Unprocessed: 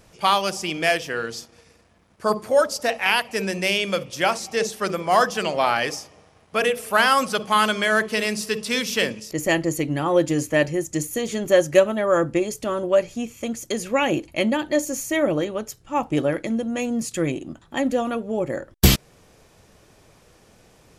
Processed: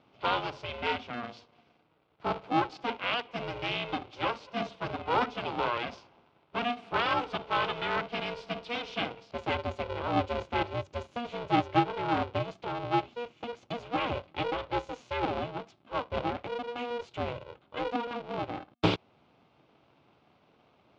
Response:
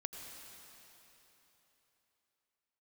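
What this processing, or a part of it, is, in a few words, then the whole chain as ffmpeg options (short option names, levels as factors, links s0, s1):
ring modulator pedal into a guitar cabinet: -af "aeval=exprs='val(0)*sgn(sin(2*PI*240*n/s))':c=same,highpass=100,equalizer=f=200:t=q:w=4:g=-3,equalizer=f=370:t=q:w=4:g=-3,equalizer=f=1800:t=q:w=4:g=-10,lowpass=f=3500:w=0.5412,lowpass=f=3500:w=1.3066,volume=0.376"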